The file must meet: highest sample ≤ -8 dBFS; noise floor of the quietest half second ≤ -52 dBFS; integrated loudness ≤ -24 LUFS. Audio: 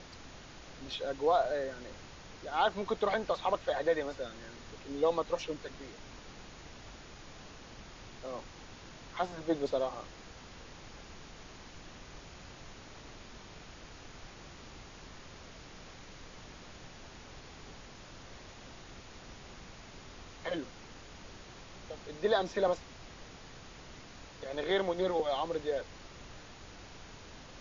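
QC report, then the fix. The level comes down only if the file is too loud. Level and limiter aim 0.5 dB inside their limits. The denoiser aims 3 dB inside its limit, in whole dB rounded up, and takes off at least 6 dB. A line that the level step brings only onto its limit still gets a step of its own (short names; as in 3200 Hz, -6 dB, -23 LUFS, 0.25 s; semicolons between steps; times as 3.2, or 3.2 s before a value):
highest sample -17.0 dBFS: OK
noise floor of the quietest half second -50 dBFS: fail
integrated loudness -34.5 LUFS: OK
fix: denoiser 6 dB, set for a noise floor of -50 dBFS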